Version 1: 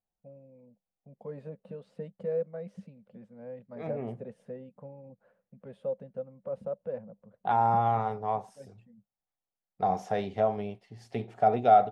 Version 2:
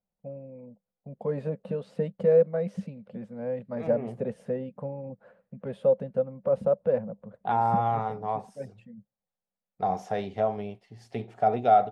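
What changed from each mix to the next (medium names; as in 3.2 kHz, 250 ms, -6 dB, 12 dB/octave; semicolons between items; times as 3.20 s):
first voice +11.0 dB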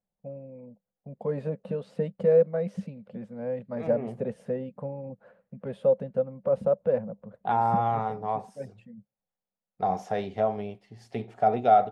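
reverb: on, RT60 0.50 s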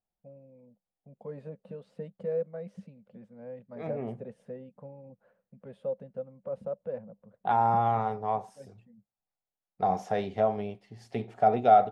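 first voice -11.0 dB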